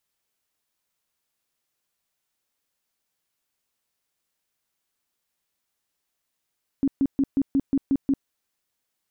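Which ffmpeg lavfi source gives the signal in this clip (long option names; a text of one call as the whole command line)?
ffmpeg -f lavfi -i "aevalsrc='0.141*sin(2*PI*274*mod(t,0.18))*lt(mod(t,0.18),13/274)':duration=1.44:sample_rate=44100" out.wav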